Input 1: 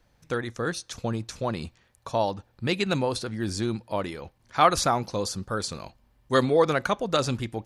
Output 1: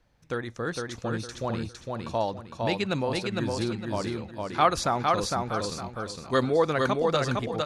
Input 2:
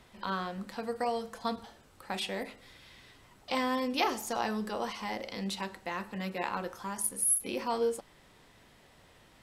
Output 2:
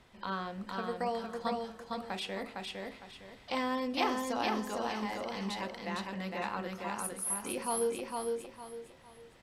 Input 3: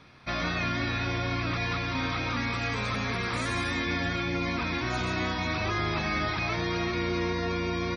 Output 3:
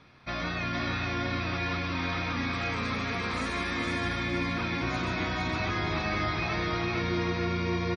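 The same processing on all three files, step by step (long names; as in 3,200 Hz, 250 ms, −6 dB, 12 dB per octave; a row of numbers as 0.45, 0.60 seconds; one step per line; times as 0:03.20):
high-shelf EQ 8,600 Hz −8.5 dB
repeating echo 458 ms, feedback 31%, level −3 dB
level −2.5 dB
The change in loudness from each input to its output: −1.5, −2.5, −1.0 LU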